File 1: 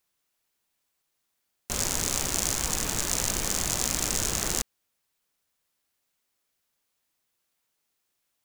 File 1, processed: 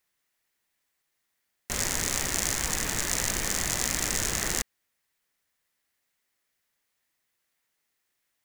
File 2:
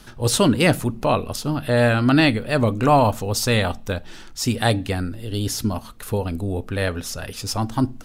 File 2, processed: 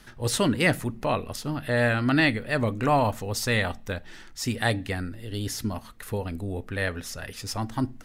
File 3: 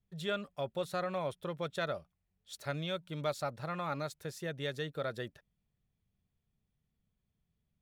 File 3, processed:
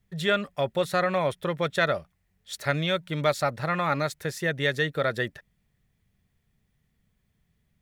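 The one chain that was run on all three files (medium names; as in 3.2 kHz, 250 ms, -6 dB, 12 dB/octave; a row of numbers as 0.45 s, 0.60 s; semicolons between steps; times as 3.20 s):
peaking EQ 1.9 kHz +8 dB 0.47 oct; normalise loudness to -27 LUFS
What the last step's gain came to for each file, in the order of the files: -1.0 dB, -6.5 dB, +10.5 dB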